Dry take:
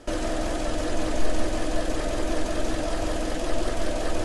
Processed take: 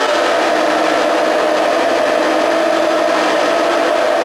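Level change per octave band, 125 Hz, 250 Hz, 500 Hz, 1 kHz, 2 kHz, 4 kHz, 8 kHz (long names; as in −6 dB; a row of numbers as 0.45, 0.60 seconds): can't be measured, +9.5 dB, +17.0 dB, +19.0 dB, +19.0 dB, +15.0 dB, +8.0 dB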